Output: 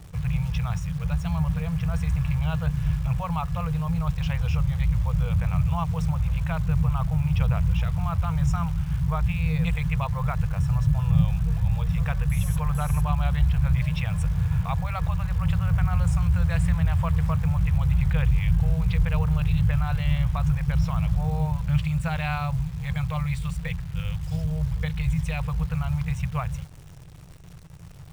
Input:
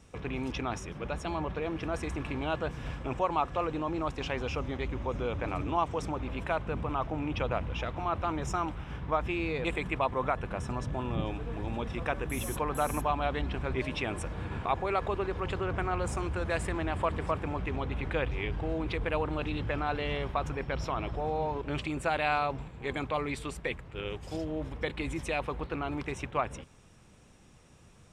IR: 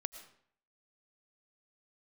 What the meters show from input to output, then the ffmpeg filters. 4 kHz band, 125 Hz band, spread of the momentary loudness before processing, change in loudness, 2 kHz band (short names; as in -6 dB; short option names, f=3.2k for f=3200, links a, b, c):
0.0 dB, +15.0 dB, 6 LU, +8.0 dB, -0.5 dB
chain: -af "afftfilt=real='re*(1-between(b*sr/4096,180,460))':imag='im*(1-between(b*sr/4096,180,460))':win_size=4096:overlap=0.75,lowshelf=f=350:t=q:w=3:g=13.5,acrusher=bits=9:dc=4:mix=0:aa=0.000001"